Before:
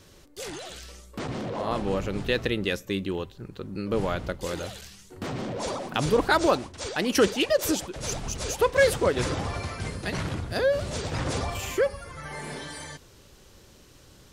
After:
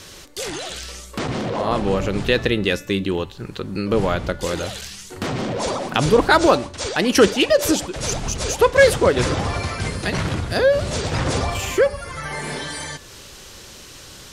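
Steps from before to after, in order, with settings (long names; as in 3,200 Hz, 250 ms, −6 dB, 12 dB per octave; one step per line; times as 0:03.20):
Bessel low-pass filter 12,000 Hz, order 2
hum removal 289.3 Hz, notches 33
one half of a high-frequency compander encoder only
level +7.5 dB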